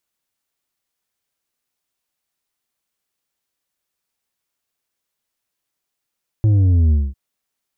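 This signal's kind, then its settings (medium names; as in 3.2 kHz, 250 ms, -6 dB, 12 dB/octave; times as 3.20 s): sub drop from 110 Hz, over 0.70 s, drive 6 dB, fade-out 0.22 s, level -11.5 dB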